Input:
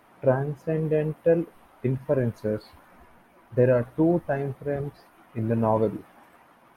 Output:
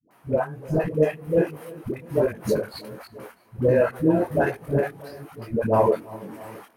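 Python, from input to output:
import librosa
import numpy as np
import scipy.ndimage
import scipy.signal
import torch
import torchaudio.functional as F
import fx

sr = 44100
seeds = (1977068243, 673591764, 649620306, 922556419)

p1 = fx.over_compress(x, sr, threshold_db=-29.0, ratio=-1.0)
p2 = x + (p1 * librosa.db_to_amplitude(-0.5))
p3 = scipy.signal.sosfilt(scipy.signal.butter(2, 96.0, 'highpass', fs=sr, output='sos'), p2)
p4 = fx.low_shelf(p3, sr, hz=220.0, db=-2.5)
p5 = p4 + fx.echo_feedback(p4, sr, ms=324, feedback_pct=33, wet_db=-10.5, dry=0)
p6 = fx.level_steps(p5, sr, step_db=21)
p7 = fx.high_shelf(p6, sr, hz=3900.0, db=7.5)
p8 = fx.notch(p7, sr, hz=3500.0, q=16.0)
p9 = fx.dispersion(p8, sr, late='highs', ms=110.0, hz=450.0)
p10 = fx.detune_double(p9, sr, cents=45)
y = p10 * librosa.db_to_amplitude(7.5)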